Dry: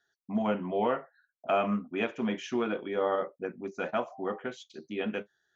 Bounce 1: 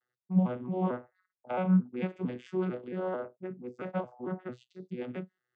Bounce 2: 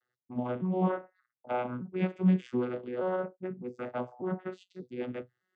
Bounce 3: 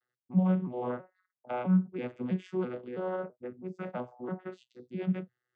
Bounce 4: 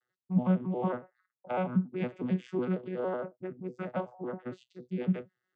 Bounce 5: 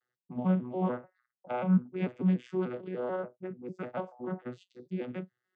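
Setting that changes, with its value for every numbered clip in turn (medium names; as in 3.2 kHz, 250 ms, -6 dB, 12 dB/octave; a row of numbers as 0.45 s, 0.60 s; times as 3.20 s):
vocoder on a broken chord, a note every: 224 ms, 601 ms, 329 ms, 92 ms, 147 ms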